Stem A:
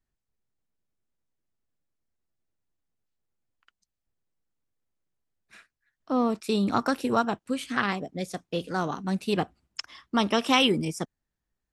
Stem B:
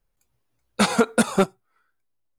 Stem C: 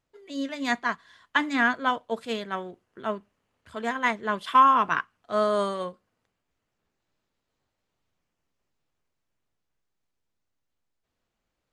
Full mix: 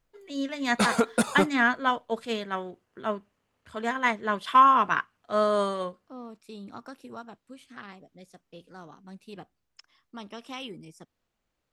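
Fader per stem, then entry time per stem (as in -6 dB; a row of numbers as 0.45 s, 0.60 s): -17.5 dB, -5.0 dB, 0.0 dB; 0.00 s, 0.00 s, 0.00 s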